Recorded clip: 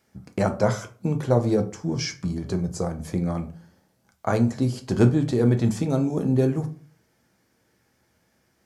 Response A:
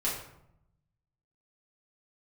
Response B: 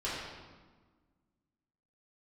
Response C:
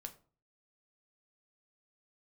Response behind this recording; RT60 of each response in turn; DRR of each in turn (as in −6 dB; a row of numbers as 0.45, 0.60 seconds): C; 0.75, 1.4, 0.40 seconds; −7.5, −10.0, 5.5 decibels